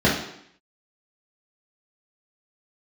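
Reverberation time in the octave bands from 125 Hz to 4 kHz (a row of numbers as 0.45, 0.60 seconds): 0.60, 0.75, 0.70, 0.70, 0.75, 0.70 seconds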